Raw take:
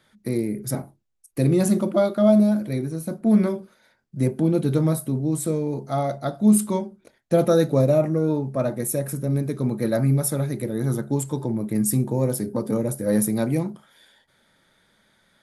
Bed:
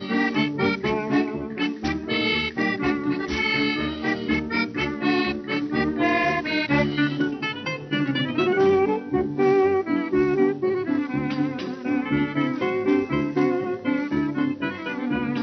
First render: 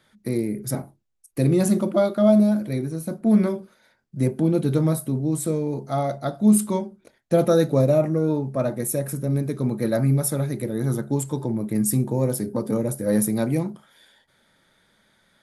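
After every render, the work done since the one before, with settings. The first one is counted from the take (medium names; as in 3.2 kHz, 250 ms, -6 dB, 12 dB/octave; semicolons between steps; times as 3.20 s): no audible change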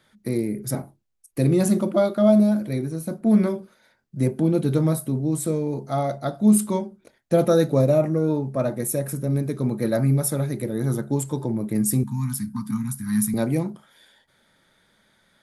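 12.03–13.34 s: elliptic band-stop 240–1000 Hz, stop band 50 dB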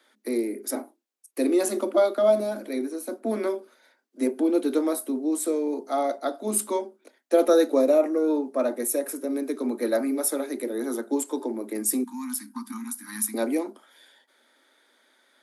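steep high-pass 240 Hz 96 dB/octave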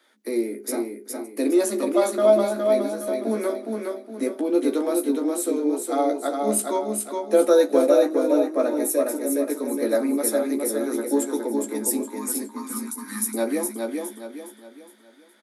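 doubling 14 ms -5.5 dB; feedback delay 414 ms, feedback 38%, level -4 dB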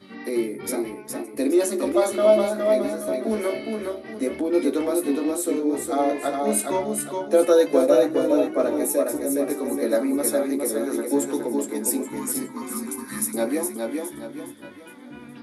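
add bed -16.5 dB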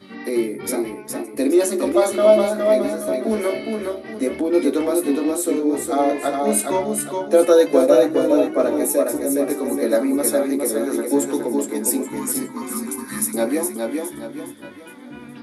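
trim +3.5 dB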